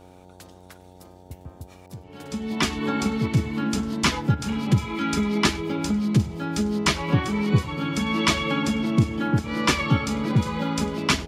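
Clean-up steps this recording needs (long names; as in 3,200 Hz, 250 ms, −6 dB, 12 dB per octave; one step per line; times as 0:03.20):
click removal
hum removal 91.4 Hz, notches 10
echo removal 100 ms −22 dB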